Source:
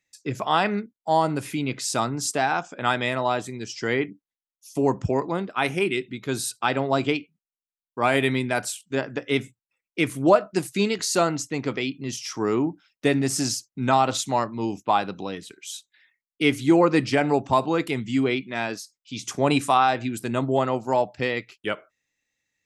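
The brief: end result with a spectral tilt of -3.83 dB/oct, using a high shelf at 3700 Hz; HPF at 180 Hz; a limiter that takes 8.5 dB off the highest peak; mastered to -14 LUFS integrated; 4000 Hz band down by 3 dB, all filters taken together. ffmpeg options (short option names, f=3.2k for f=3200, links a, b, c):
-af "highpass=180,highshelf=f=3.7k:g=3,equalizer=f=4k:t=o:g=-6,volume=13dB,alimiter=limit=-0.5dB:level=0:latency=1"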